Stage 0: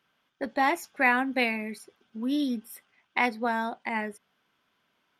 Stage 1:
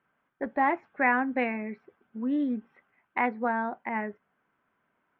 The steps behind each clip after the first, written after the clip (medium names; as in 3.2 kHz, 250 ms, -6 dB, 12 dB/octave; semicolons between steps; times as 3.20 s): low-pass 2 kHz 24 dB/octave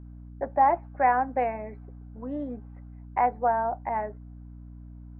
band-pass filter 710 Hz, Q 2.5; hum 60 Hz, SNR 15 dB; trim +8 dB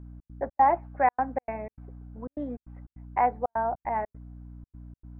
trance gate "xx.xx.xxxxx." 152 bpm -60 dB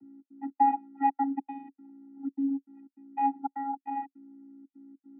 vocoder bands 16, square 275 Hz; trim -1.5 dB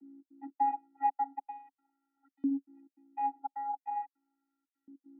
LFO high-pass saw up 0.41 Hz 270–1700 Hz; trim -8.5 dB